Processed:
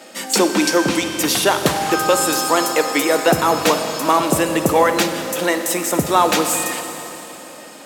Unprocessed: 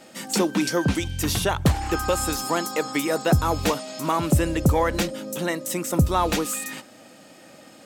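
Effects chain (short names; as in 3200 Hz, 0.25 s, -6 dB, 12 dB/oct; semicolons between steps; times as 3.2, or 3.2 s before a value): HPF 300 Hz 12 dB/oct; Schroeder reverb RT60 3.5 s, DRR 6.5 dB; gain +8 dB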